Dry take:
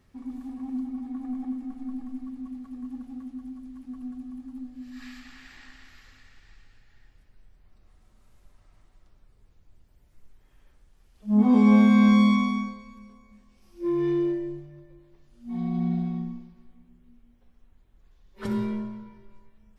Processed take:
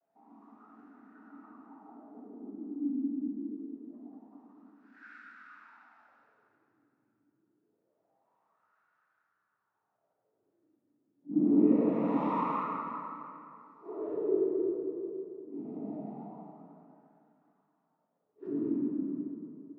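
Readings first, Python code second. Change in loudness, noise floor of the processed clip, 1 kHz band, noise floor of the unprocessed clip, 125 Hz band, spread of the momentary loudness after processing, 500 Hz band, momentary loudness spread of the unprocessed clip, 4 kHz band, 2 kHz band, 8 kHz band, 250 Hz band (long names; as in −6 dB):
−7.5 dB, −80 dBFS, −2.5 dB, −60 dBFS, −15.0 dB, 23 LU, 0.0 dB, 24 LU, below −20 dB, −15.0 dB, can't be measured, −9.0 dB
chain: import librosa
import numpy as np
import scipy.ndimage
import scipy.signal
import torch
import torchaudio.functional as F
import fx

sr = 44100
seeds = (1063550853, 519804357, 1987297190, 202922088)

y = fx.noise_vocoder(x, sr, seeds[0], bands=12)
y = fx.wah_lfo(y, sr, hz=0.25, low_hz=280.0, high_hz=1500.0, q=7.7)
y = fx.rev_plate(y, sr, seeds[1], rt60_s=2.8, hf_ratio=0.6, predelay_ms=0, drr_db=-6.0)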